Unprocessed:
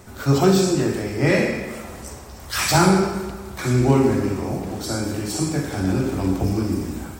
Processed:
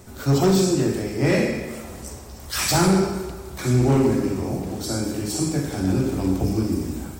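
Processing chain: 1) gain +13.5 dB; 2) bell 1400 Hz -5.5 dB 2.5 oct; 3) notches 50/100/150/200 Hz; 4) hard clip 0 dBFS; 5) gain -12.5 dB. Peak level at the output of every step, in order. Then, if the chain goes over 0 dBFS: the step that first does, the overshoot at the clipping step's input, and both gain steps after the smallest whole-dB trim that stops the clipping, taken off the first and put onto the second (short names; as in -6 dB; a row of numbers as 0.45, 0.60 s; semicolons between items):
+10.0, +9.0, +8.5, 0.0, -12.5 dBFS; step 1, 8.5 dB; step 1 +4.5 dB, step 5 -3.5 dB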